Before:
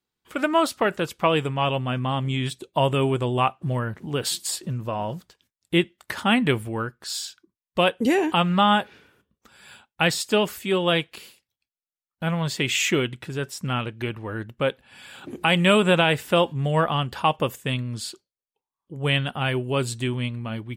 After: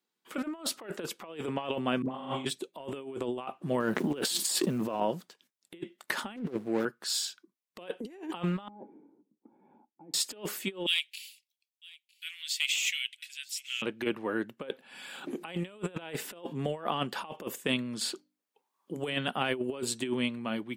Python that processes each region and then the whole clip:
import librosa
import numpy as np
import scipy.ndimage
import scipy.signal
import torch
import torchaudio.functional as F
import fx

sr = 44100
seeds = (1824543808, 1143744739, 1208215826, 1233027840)

y = fx.chain(x, sr, fx.peak_eq(hz=620.0, db=2.0, octaves=2.1),
    fx.dispersion(late='highs', ms=62.0, hz=630.0),
    fx.room_flutter(wall_m=6.6, rt60_s=1.5), at=(2.02, 2.45))
y = fx.chain(y, sr, fx.law_mismatch(coded='A'),
    fx.peak_eq(hz=180.0, db=2.0, octaves=1.8),
    fx.env_flatten(amount_pct=70), at=(3.8, 5.0))
y = fx.chain(y, sr, fx.median_filter(points=41),
    fx.highpass(hz=61.0, slope=24),
    fx.doppler_dist(depth_ms=0.27), at=(6.36, 6.85))
y = fx.chain(y, sr, fx.overload_stage(gain_db=18.0),
    fx.over_compress(threshold_db=-34.0, ratio=-1.0),
    fx.formant_cascade(vowel='u'), at=(8.68, 10.14))
y = fx.chain(y, sr, fx.steep_highpass(hz=2300.0, slope=36),
    fx.clip_hard(threshold_db=-17.0),
    fx.echo_single(ms=956, db=-23.0), at=(10.86, 13.82))
y = fx.chain(y, sr, fx.hum_notches(base_hz=50, count=6),
    fx.band_squash(depth_pct=40), at=(18.01, 19.28))
y = scipy.signal.sosfilt(scipy.signal.butter(4, 190.0, 'highpass', fs=sr, output='sos'), y)
y = fx.dynamic_eq(y, sr, hz=380.0, q=1.3, threshold_db=-35.0, ratio=4.0, max_db=5)
y = fx.over_compress(y, sr, threshold_db=-26.0, ratio=-0.5)
y = y * librosa.db_to_amplitude(-6.0)